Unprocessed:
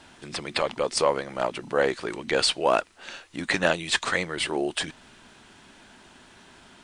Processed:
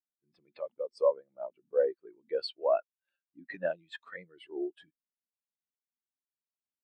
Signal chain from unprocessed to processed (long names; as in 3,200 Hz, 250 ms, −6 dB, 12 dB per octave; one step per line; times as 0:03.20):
every bin expanded away from the loudest bin 2.5 to 1
level −7.5 dB